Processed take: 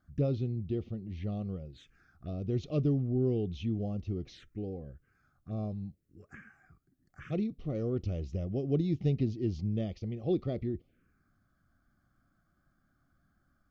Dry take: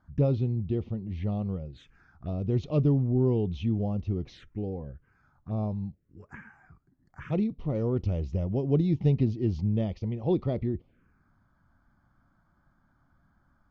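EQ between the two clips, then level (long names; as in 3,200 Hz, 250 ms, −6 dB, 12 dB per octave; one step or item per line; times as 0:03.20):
Butterworth band-reject 930 Hz, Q 3.2
parametric band 330 Hz +3 dB 0.77 octaves
high-shelf EQ 3,700 Hz +9.5 dB
−6.0 dB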